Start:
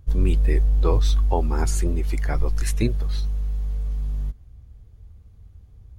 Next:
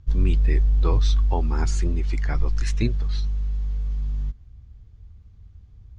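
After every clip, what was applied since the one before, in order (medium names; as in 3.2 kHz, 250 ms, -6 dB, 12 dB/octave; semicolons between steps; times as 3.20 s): low-pass 6.5 kHz 24 dB/octave; peaking EQ 540 Hz -6.5 dB 1.3 oct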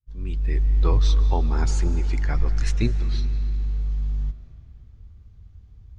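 fade-in on the opening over 0.83 s; algorithmic reverb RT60 3.3 s, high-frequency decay 0.7×, pre-delay 115 ms, DRR 12 dB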